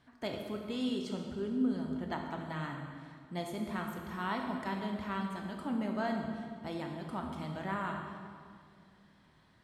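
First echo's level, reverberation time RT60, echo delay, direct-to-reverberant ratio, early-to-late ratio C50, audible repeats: no echo audible, 2.1 s, no echo audible, 2.0 dB, 3.5 dB, no echo audible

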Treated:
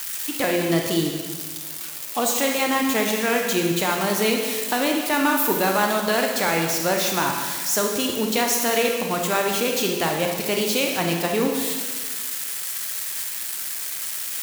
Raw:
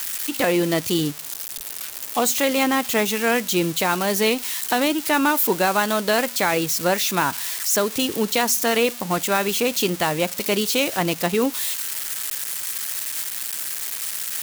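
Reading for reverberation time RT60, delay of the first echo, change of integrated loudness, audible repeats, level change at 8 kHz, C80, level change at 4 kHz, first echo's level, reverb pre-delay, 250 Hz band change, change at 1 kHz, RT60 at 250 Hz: 1.5 s, no echo audible, −1.0 dB, no echo audible, −1.0 dB, 5.0 dB, −1.0 dB, no echo audible, 26 ms, −0.5 dB, −1.0 dB, 1.6 s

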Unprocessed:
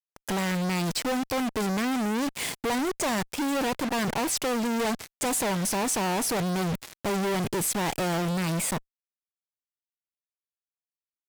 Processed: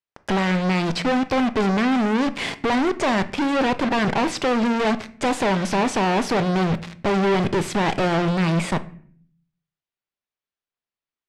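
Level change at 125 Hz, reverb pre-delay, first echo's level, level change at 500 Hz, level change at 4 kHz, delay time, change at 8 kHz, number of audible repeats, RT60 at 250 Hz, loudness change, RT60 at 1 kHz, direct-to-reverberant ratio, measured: +7.0 dB, 3 ms, no echo audible, +7.5 dB, +4.0 dB, no echo audible, −6.5 dB, no echo audible, 0.85 s, +6.0 dB, 0.50 s, 11.5 dB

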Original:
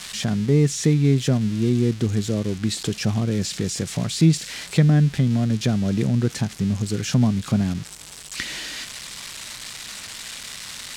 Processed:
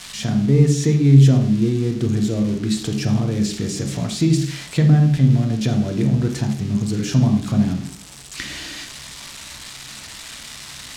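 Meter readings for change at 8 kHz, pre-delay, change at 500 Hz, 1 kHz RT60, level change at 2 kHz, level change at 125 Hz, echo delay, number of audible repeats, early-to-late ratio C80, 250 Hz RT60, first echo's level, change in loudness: −1.0 dB, 3 ms, +1.0 dB, 0.45 s, −0.5 dB, +4.5 dB, no echo audible, no echo audible, 11.0 dB, 0.55 s, no echo audible, +3.5 dB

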